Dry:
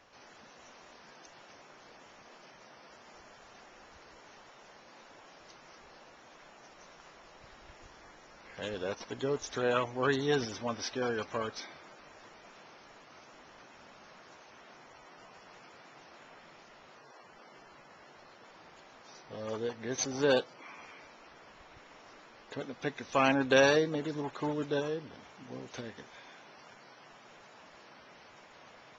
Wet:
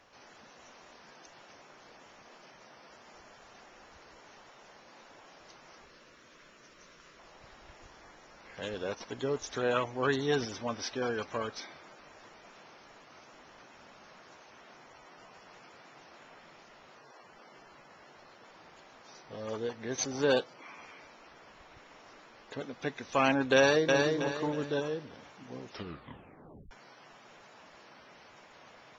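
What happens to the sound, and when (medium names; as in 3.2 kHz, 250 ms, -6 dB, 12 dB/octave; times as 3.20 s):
5.85–7.19 s: peaking EQ 790 Hz -14 dB 0.46 oct
23.56–23.99 s: echo throw 320 ms, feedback 35%, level -3 dB
25.62 s: tape stop 1.09 s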